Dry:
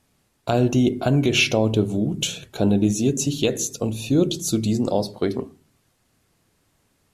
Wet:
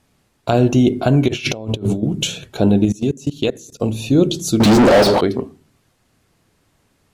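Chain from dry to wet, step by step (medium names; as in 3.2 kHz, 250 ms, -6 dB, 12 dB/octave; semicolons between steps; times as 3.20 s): 2.85–3.80 s: level held to a coarse grid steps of 21 dB; treble shelf 6.4 kHz -5.5 dB; 1.28–2.03 s: compressor with a negative ratio -26 dBFS, ratio -0.5; 4.60–5.21 s: overdrive pedal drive 40 dB, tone 2.1 kHz, clips at -8.5 dBFS; trim +5 dB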